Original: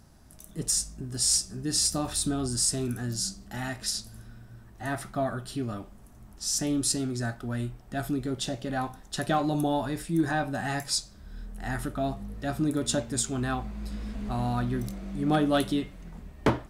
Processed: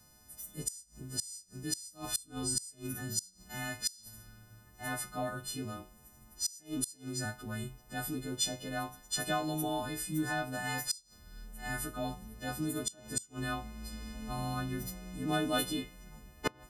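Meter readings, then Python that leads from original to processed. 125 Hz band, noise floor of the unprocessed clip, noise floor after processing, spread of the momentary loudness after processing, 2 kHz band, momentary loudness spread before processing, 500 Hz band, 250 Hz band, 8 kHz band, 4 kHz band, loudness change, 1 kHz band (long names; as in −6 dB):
−9.0 dB, −51 dBFS, −61 dBFS, 12 LU, −3.0 dB, 12 LU, −8.5 dB, −9.0 dB, −7.5 dB, −6.5 dB, −7.5 dB, −6.5 dB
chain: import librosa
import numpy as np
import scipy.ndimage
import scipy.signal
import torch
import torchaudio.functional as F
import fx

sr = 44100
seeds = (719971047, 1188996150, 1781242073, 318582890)

y = fx.freq_snap(x, sr, grid_st=3)
y = fx.gate_flip(y, sr, shuts_db=-11.0, range_db=-26)
y = y * 10.0 ** (-7.5 / 20.0)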